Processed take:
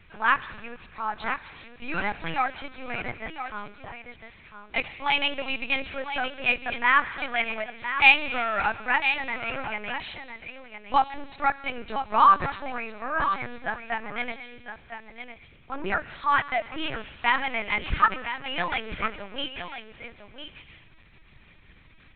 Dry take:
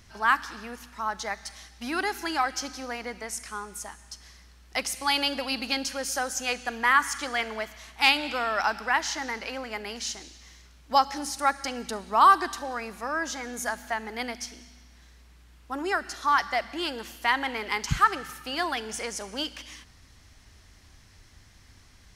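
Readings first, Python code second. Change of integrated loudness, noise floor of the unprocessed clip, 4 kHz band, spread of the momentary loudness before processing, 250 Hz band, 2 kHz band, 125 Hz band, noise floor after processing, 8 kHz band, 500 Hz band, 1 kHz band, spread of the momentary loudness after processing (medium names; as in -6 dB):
+1.5 dB, -55 dBFS, -1.5 dB, 16 LU, -2.0 dB, +3.0 dB, +0.5 dB, -53 dBFS, under -40 dB, -1.0 dB, +0.5 dB, 20 LU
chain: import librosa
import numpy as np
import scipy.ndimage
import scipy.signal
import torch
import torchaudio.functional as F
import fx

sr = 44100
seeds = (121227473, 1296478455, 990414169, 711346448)

y = x + 10.0 ** (-9.5 / 20.0) * np.pad(x, (int(1007 * sr / 1000.0), 0))[:len(x)]
y = fx.lpc_vocoder(y, sr, seeds[0], excitation='pitch_kept', order=10)
y = fx.peak_eq(y, sr, hz=2400.0, db=10.0, octaves=0.27)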